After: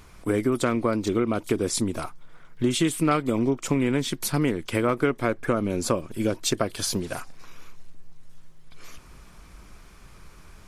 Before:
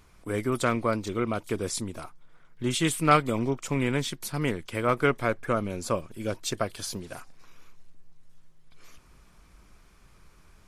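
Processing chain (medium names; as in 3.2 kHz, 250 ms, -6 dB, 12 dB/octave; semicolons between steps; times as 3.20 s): dynamic bell 300 Hz, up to +7 dB, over -40 dBFS, Q 1.2; compression 4:1, threshold -29 dBFS, peak gain reduction 13.5 dB; trim +8 dB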